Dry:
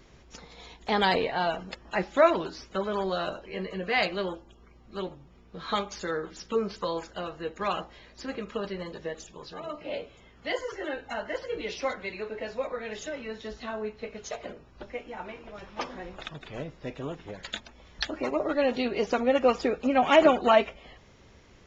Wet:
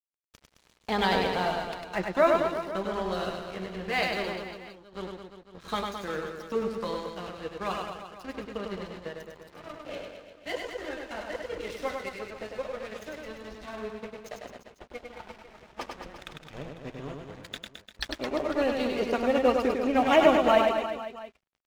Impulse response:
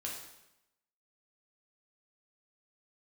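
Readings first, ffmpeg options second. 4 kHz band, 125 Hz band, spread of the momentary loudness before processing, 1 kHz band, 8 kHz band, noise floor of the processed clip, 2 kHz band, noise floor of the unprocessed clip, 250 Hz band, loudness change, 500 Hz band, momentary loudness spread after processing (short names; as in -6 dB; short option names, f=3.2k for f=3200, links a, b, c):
-1.0 dB, 0.0 dB, 18 LU, -0.5 dB, n/a, -66 dBFS, -1.0 dB, -55 dBFS, 0.0 dB, 0.0 dB, -0.5 dB, 21 LU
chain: -af "lowshelf=f=140:g=7,aeval=exprs='sgn(val(0))*max(abs(val(0))-0.0106,0)':c=same,aecho=1:1:100|215|347.2|499.3|674.2:0.631|0.398|0.251|0.158|0.1,volume=-2dB"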